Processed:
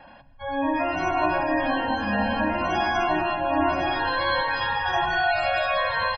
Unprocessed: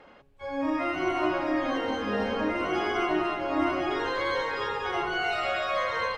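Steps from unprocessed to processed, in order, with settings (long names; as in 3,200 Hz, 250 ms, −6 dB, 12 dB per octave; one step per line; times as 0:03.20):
comb filter 1.2 ms, depth 97%
gate on every frequency bin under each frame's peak −25 dB strong
convolution reverb RT60 0.60 s, pre-delay 106 ms, DRR 15.5 dB
healed spectral selection 0:04.74–0:05.29, 1,700–3,400 Hz before
level +3 dB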